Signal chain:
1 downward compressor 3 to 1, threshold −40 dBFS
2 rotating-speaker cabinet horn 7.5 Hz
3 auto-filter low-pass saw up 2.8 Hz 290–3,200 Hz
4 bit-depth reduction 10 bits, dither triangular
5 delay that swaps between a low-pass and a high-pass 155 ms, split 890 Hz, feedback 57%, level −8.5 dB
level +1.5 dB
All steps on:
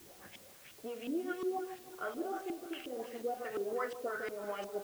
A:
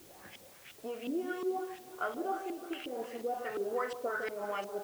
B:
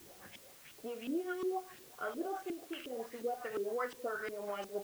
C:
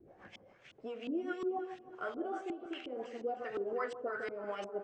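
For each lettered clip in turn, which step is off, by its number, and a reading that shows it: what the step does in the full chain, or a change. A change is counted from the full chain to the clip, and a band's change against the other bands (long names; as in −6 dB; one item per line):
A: 2, 1 kHz band +2.0 dB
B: 5, echo-to-direct ratio −11.0 dB to none audible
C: 4, distortion level −18 dB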